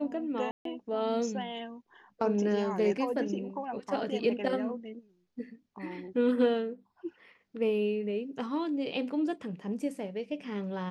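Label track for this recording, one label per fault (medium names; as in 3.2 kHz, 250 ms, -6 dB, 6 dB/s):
0.510000	0.650000	dropout 143 ms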